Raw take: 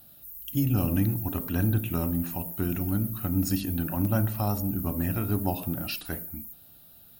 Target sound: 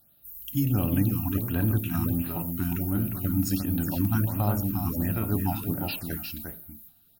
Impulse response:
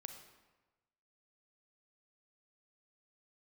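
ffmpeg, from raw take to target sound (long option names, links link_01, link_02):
-af "agate=range=-9dB:threshold=-46dB:ratio=16:detection=peak,aecho=1:1:354:0.473,afftfilt=real='re*(1-between(b*sr/1024,430*pow(7400/430,0.5+0.5*sin(2*PI*1.4*pts/sr))/1.41,430*pow(7400/430,0.5+0.5*sin(2*PI*1.4*pts/sr))*1.41))':imag='im*(1-between(b*sr/1024,430*pow(7400/430,0.5+0.5*sin(2*PI*1.4*pts/sr))/1.41,430*pow(7400/430,0.5+0.5*sin(2*PI*1.4*pts/sr))*1.41))':win_size=1024:overlap=0.75"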